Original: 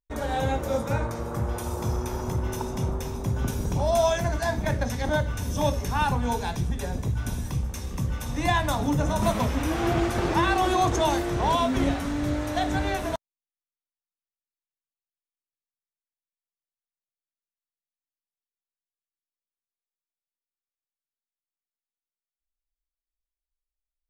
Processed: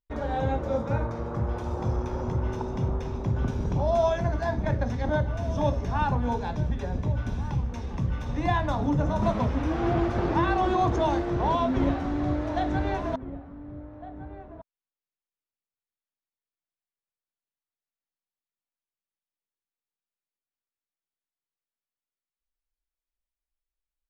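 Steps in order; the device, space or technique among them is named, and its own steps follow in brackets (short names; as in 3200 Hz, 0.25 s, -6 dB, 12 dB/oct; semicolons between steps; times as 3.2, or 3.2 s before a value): dynamic EQ 2600 Hz, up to -5 dB, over -43 dBFS, Q 0.79; shout across a valley (air absorption 200 m; outdoor echo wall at 250 m, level -13 dB)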